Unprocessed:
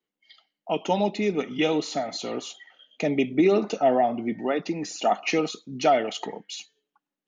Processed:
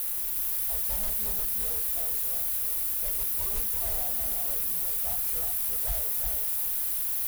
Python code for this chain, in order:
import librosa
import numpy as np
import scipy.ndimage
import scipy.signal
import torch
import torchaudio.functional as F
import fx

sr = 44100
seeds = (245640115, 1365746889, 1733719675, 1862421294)

y = fx.wiener(x, sr, points=15)
y = fx.doubler(y, sr, ms=29.0, db=-4.5)
y = fx.fold_sine(y, sr, drive_db=9, ceiling_db=-7.0)
y = fx.highpass(y, sr, hz=67.0, slope=6)
y = fx.quant_dither(y, sr, seeds[0], bits=6, dither='triangular')
y = scipy.signal.sosfilt(scipy.signal.cheby2(4, 40, [120.0, 6100.0], 'bandstop', fs=sr, output='sos'), y)
y = fx.leveller(y, sr, passes=3)
y = y + 10.0 ** (-4.0 / 20.0) * np.pad(y, (int(358 * sr / 1000.0), 0))[:len(y)]